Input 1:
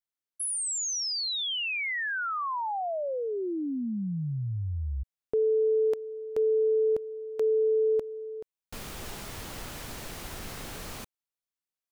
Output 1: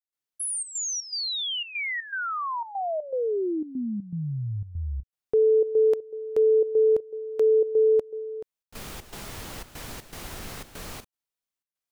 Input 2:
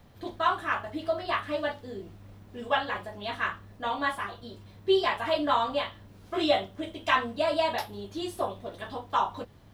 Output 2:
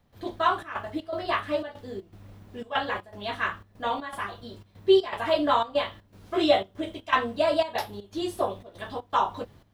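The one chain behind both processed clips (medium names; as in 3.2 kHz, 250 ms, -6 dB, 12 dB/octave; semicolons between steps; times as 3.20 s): dynamic bell 440 Hz, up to +4 dB, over -38 dBFS, Q 1.3; trance gate ".xxxx.xx" 120 bpm -12 dB; trim +1.5 dB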